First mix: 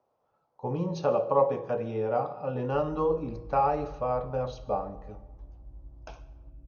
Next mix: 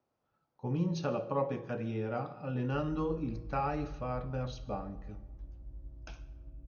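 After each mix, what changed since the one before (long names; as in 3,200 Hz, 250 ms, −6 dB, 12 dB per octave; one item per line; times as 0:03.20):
speech: add flat-topped bell 690 Hz −10 dB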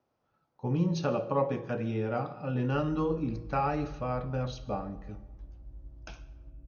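speech +4.0 dB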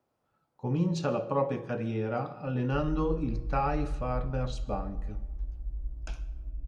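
background: remove high-pass filter 86 Hz 12 dB per octave
master: remove linear-phase brick-wall low-pass 6,600 Hz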